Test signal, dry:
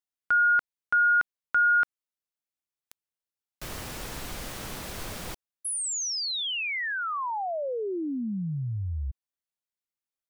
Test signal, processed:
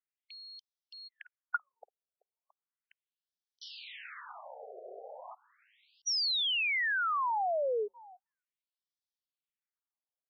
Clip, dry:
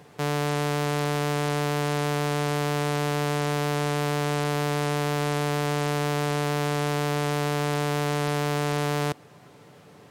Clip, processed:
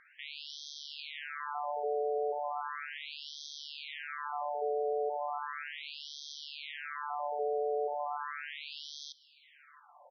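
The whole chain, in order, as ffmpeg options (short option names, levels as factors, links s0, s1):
-filter_complex "[0:a]asoftclip=type=tanh:threshold=0.158,asplit=2[s0][s1];[s1]aecho=0:1:672:0.0841[s2];[s0][s2]amix=inputs=2:normalize=0,afftfilt=real='re*between(b*sr/1024,520*pow(4500/520,0.5+0.5*sin(2*PI*0.36*pts/sr))/1.41,520*pow(4500/520,0.5+0.5*sin(2*PI*0.36*pts/sr))*1.41)':imag='im*between(b*sr/1024,520*pow(4500/520,0.5+0.5*sin(2*PI*0.36*pts/sr))/1.41,520*pow(4500/520,0.5+0.5*sin(2*PI*0.36*pts/sr))*1.41)':win_size=1024:overlap=0.75"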